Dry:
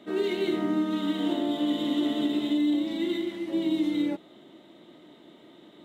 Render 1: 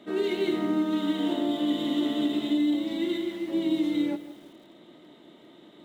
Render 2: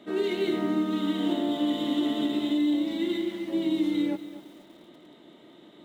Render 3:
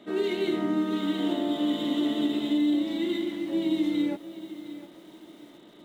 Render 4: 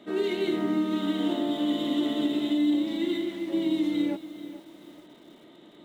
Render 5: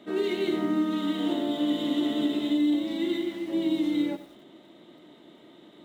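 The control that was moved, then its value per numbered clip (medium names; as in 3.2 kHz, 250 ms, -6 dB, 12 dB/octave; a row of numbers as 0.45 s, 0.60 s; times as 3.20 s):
bit-crushed delay, time: 161 ms, 241 ms, 712 ms, 435 ms, 94 ms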